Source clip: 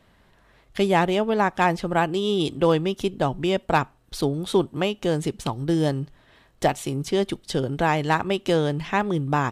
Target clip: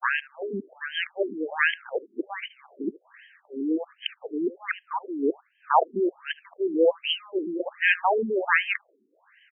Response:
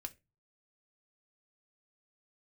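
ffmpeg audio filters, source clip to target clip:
-filter_complex "[0:a]areverse,asplit=2[a][b];[b]aecho=0:1:77:0.0794[c];[a][c]amix=inputs=2:normalize=0,crystalizer=i=8.5:c=0,afftfilt=real='re*between(b*sr/1024,290*pow(2300/290,0.5+0.5*sin(2*PI*1.3*pts/sr))/1.41,290*pow(2300/290,0.5+0.5*sin(2*PI*1.3*pts/sr))*1.41)':imag='im*between(b*sr/1024,290*pow(2300/290,0.5+0.5*sin(2*PI*1.3*pts/sr))/1.41,290*pow(2300/290,0.5+0.5*sin(2*PI*1.3*pts/sr))*1.41)':win_size=1024:overlap=0.75"

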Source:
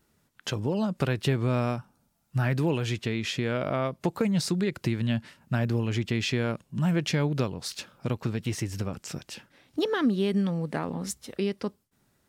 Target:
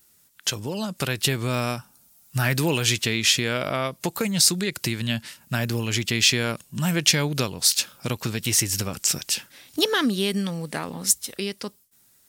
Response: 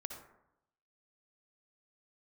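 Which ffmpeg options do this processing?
-af "crystalizer=i=7.5:c=0,dynaudnorm=f=130:g=17:m=11.5dB,volume=-3.5dB"

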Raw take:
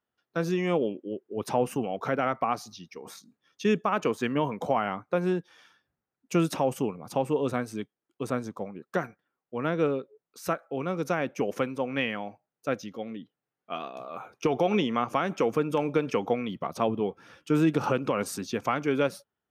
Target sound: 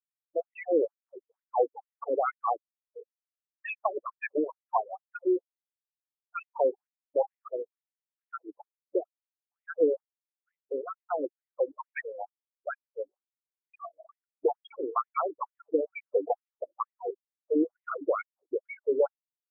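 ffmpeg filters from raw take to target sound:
-af "bandreject=f=400.1:t=h:w=4,bandreject=f=800.2:t=h:w=4,bandreject=f=1.2003k:t=h:w=4,bandreject=f=1.6004k:t=h:w=4,bandreject=f=2.0005k:t=h:w=4,bandreject=f=2.4006k:t=h:w=4,bandreject=f=2.8007k:t=h:w=4,bandreject=f=3.2008k:t=h:w=4,bandreject=f=3.6009k:t=h:w=4,bandreject=f=4.001k:t=h:w=4,bandreject=f=4.4011k:t=h:w=4,bandreject=f=4.8012k:t=h:w=4,bandreject=f=5.2013k:t=h:w=4,bandreject=f=5.6014k:t=h:w=4,bandreject=f=6.0015k:t=h:w=4,bandreject=f=6.4016k:t=h:w=4,bandreject=f=6.8017k:t=h:w=4,bandreject=f=7.2018k:t=h:w=4,bandreject=f=7.6019k:t=h:w=4,bandreject=f=8.002k:t=h:w=4,bandreject=f=8.4021k:t=h:w=4,bandreject=f=8.8022k:t=h:w=4,bandreject=f=9.2023k:t=h:w=4,bandreject=f=9.6024k:t=h:w=4,bandreject=f=10.0025k:t=h:w=4,bandreject=f=10.4026k:t=h:w=4,bandreject=f=10.8027k:t=h:w=4,bandreject=f=11.2028k:t=h:w=4,bandreject=f=11.6029k:t=h:w=4,bandreject=f=12.003k:t=h:w=4,bandreject=f=12.4031k:t=h:w=4,bandreject=f=12.8032k:t=h:w=4,bandreject=f=13.2033k:t=h:w=4,bandreject=f=13.6034k:t=h:w=4,bandreject=f=14.0035k:t=h:w=4,afftfilt=real='re*gte(hypot(re,im),0.0708)':imag='im*gte(hypot(re,im),0.0708)':win_size=1024:overlap=0.75,afftfilt=real='re*between(b*sr/1024,390*pow(2800/390,0.5+0.5*sin(2*PI*2.2*pts/sr))/1.41,390*pow(2800/390,0.5+0.5*sin(2*PI*2.2*pts/sr))*1.41)':imag='im*between(b*sr/1024,390*pow(2800/390,0.5+0.5*sin(2*PI*2.2*pts/sr))/1.41,390*pow(2800/390,0.5+0.5*sin(2*PI*2.2*pts/sr))*1.41)':win_size=1024:overlap=0.75,volume=3.5dB"

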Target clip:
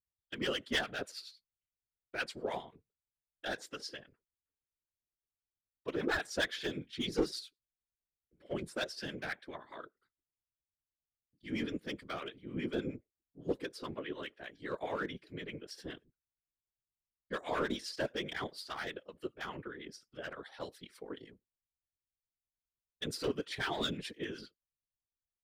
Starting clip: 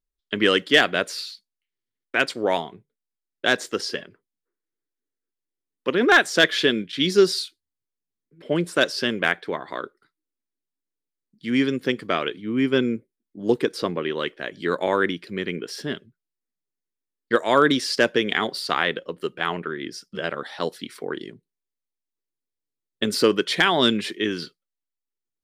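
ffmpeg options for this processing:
-filter_complex "[0:a]aeval=exprs='clip(val(0),-1,0.2)':c=same,afftfilt=real='hypot(re,im)*cos(2*PI*random(0))':imag='hypot(re,im)*sin(2*PI*random(1))':win_size=512:overlap=0.75,acrossover=split=950[a][b];[a]aeval=exprs='val(0)*(1-0.7/2+0.7/2*cos(2*PI*9.7*n/s))':c=same[c];[b]aeval=exprs='val(0)*(1-0.7/2-0.7/2*cos(2*PI*9.7*n/s))':c=same[d];[c][d]amix=inputs=2:normalize=0,volume=-6.5dB"

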